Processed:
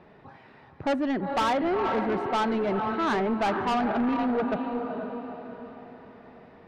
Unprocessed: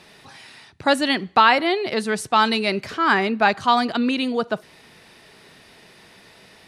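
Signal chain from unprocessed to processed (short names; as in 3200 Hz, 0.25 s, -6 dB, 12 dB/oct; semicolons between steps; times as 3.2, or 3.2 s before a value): LPF 1100 Hz 12 dB/oct; diffused feedback echo 0.455 s, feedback 45%, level -7.5 dB; soft clip -21.5 dBFS, distortion -9 dB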